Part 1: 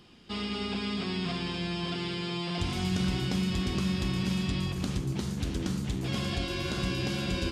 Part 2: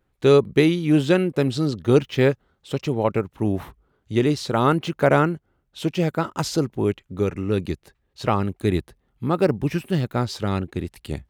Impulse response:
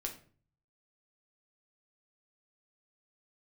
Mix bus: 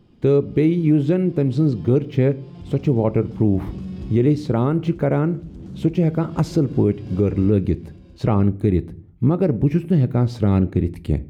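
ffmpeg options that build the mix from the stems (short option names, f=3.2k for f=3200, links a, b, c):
-filter_complex "[0:a]acompressor=threshold=-31dB:ratio=6,asoftclip=type=tanh:threshold=-31.5dB,volume=-1.5dB,asplit=2[a][b];[b]volume=-16dB[c];[1:a]equalizer=f=2.2k:w=4.2:g=6.5,volume=-1dB,asplit=3[d][e][f];[e]volume=-9dB[g];[f]apad=whole_len=331475[h];[a][h]sidechaincompress=threshold=-23dB:ratio=8:attack=16:release=711[i];[2:a]atrim=start_sample=2205[j];[g][j]afir=irnorm=-1:irlink=0[k];[c]aecho=0:1:675:1[l];[i][d][k][l]amix=inputs=4:normalize=0,tiltshelf=f=760:g=9.5,dynaudnorm=f=500:g=3:m=11.5dB,alimiter=limit=-8dB:level=0:latency=1:release=198"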